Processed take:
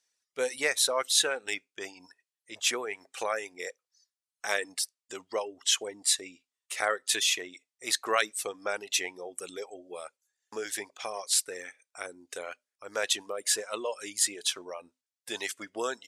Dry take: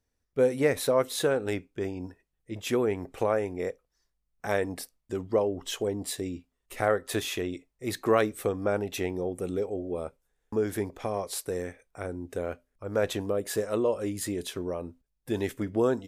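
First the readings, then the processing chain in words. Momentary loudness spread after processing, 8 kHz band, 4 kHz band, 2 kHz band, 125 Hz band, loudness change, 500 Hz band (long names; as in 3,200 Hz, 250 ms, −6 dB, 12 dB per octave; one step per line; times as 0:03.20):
17 LU, +10.5 dB, +9.5 dB, +4.5 dB, below −25 dB, 0.0 dB, −8.0 dB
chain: meter weighting curve ITU-R 468
reverb reduction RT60 0.98 s
low-shelf EQ 190 Hz −9.5 dB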